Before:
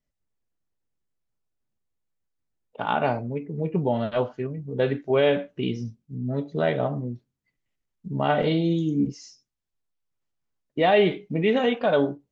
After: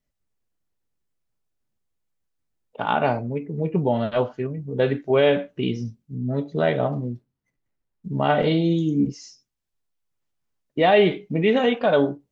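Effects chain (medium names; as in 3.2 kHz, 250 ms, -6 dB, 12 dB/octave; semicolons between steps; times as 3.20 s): 6.92–8.19 s: median filter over 15 samples; trim +2.5 dB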